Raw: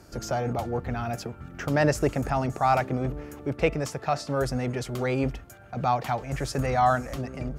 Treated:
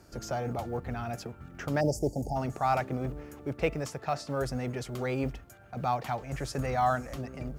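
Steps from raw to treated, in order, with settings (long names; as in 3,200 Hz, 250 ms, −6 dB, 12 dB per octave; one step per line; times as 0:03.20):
time-frequency box erased 0:01.81–0:02.36, 900–4,500 Hz
log-companded quantiser 8 bits
level −5 dB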